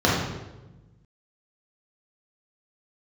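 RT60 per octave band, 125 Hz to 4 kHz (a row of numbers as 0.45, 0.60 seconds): 1.8, 1.5, 1.2, 0.95, 0.85, 0.80 seconds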